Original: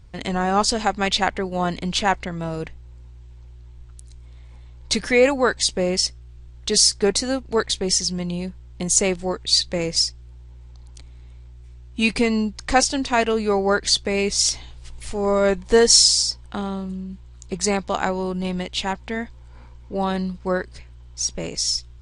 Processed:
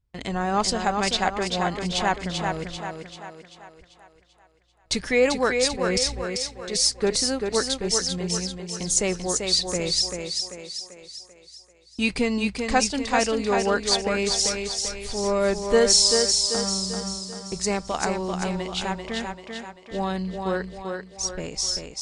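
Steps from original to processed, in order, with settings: gate -37 dBFS, range -23 dB; 5.68–6.84 s: transient shaper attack -9 dB, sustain +12 dB; on a send: thinning echo 390 ms, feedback 50%, high-pass 170 Hz, level -4.5 dB; on the sum: trim -4 dB

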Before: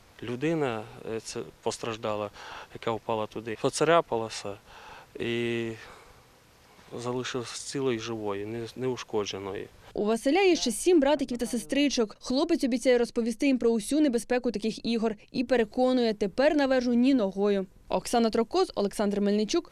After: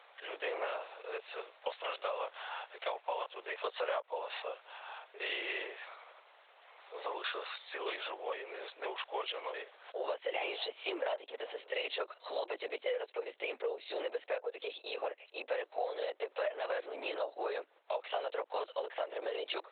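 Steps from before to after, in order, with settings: LPC vocoder at 8 kHz whisper; steep high-pass 500 Hz 36 dB/octave; compression 6:1, threshold -33 dBFS, peak gain reduction 15 dB

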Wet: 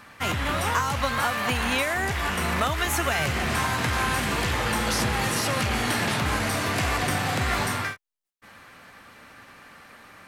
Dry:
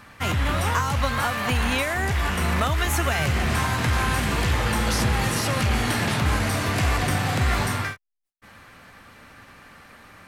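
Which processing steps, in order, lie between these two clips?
bass shelf 130 Hz -9.5 dB

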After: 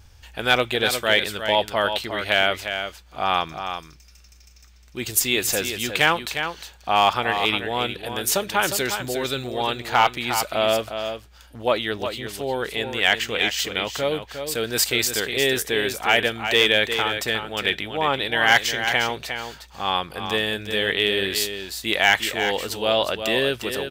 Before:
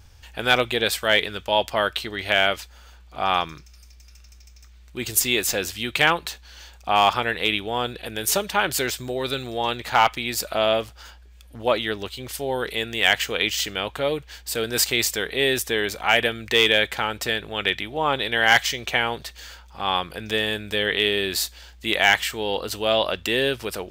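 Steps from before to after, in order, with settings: 12.20–13.59 s: treble shelf 8.1 kHz -6.5 dB; delay 357 ms -8 dB

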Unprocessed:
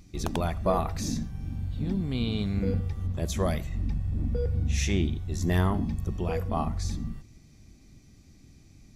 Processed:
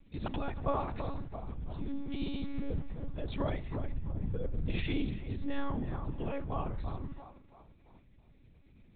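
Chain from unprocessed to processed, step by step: on a send: band-passed feedback delay 332 ms, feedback 43%, band-pass 800 Hz, level -8 dB; on the sum: monotone LPC vocoder at 8 kHz 280 Hz; trim -6.5 dB

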